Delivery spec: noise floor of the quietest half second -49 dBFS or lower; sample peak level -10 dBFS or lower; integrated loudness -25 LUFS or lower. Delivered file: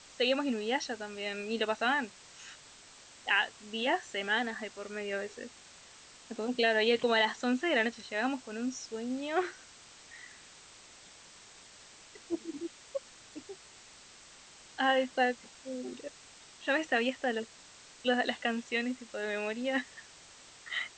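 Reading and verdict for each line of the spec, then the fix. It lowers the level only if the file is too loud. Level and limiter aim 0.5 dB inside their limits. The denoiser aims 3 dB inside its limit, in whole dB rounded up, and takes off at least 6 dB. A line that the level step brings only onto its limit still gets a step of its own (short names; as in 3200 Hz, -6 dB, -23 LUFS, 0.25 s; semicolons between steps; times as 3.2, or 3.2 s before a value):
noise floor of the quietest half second -55 dBFS: OK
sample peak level -15.5 dBFS: OK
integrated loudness -32.5 LUFS: OK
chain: none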